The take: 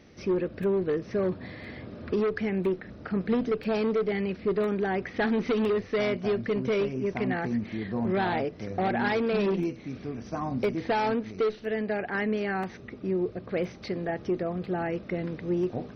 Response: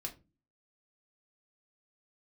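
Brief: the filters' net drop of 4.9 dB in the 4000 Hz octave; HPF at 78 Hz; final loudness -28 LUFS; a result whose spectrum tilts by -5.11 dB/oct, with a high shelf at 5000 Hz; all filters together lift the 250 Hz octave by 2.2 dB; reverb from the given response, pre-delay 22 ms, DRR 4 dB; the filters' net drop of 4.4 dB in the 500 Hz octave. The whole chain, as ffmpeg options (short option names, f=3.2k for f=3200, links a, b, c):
-filter_complex "[0:a]highpass=78,equalizer=f=250:t=o:g=5,equalizer=f=500:t=o:g=-8,equalizer=f=4k:t=o:g=-3.5,highshelf=f=5k:g=-7,asplit=2[a][b];[1:a]atrim=start_sample=2205,adelay=22[c];[b][c]afir=irnorm=-1:irlink=0,volume=-2.5dB[d];[a][d]amix=inputs=2:normalize=0"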